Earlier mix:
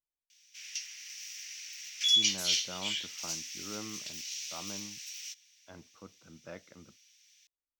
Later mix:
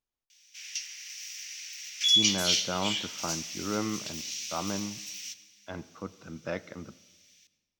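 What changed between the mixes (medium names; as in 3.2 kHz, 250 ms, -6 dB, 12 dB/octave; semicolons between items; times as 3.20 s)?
speech +10.5 dB; reverb: on, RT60 1.3 s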